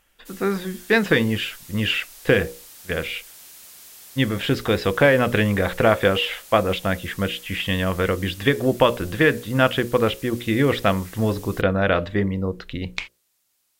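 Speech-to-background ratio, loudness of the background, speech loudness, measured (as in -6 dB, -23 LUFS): 20.0 dB, -41.5 LUFS, -21.5 LUFS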